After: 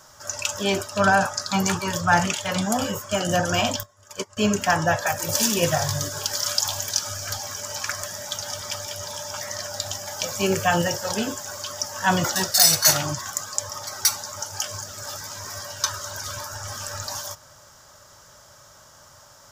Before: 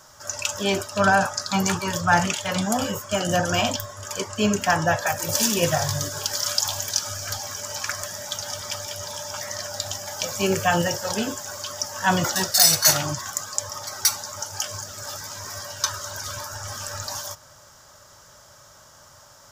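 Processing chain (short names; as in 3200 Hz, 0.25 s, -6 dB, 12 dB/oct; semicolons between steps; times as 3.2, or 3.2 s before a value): 3.83–4.37 upward expander 2.5:1, over -38 dBFS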